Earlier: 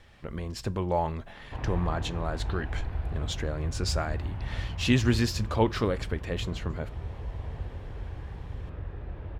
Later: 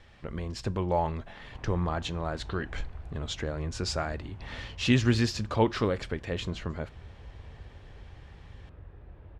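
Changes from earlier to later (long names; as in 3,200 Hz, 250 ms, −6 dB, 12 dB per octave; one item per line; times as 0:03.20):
background −10.5 dB
master: add low-pass filter 7,800 Hz 12 dB per octave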